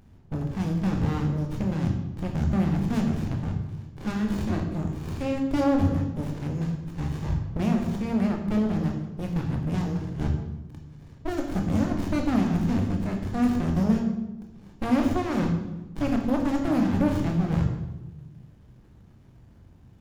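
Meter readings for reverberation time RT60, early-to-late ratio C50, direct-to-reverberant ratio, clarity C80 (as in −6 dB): 1.1 s, 5.5 dB, 2.0 dB, 7.5 dB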